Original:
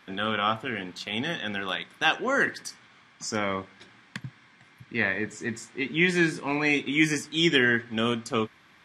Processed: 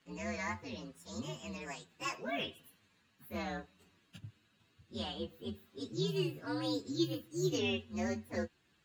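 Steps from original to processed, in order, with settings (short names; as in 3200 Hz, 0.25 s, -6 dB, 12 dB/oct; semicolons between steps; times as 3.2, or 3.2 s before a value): inharmonic rescaling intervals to 128%; high shelf 2900 Hz -8.5 dB; gain -7.5 dB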